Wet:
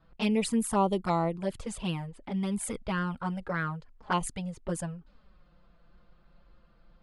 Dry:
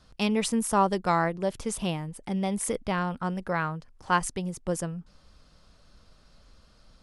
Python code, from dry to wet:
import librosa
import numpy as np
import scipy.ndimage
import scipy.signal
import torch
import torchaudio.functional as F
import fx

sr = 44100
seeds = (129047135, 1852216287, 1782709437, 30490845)

y = fx.peak_eq(x, sr, hz=5700.0, db=-10.0, octaves=0.24)
y = fx.env_flanger(y, sr, rest_ms=6.3, full_db=-21.0)
y = fx.env_lowpass(y, sr, base_hz=2000.0, full_db=-28.0)